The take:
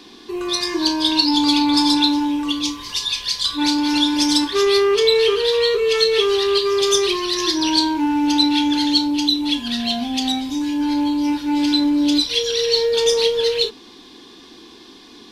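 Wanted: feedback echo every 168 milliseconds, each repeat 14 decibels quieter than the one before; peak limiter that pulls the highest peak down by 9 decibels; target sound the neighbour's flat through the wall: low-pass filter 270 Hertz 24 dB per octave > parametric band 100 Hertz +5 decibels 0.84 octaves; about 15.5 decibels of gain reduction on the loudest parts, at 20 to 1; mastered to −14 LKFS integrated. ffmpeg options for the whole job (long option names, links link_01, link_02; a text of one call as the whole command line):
ffmpeg -i in.wav -af "acompressor=threshold=-27dB:ratio=20,alimiter=level_in=2dB:limit=-24dB:level=0:latency=1,volume=-2dB,lowpass=frequency=270:width=0.5412,lowpass=frequency=270:width=1.3066,equalizer=frequency=100:width_type=o:width=0.84:gain=5,aecho=1:1:168|336:0.2|0.0399,volume=25dB" out.wav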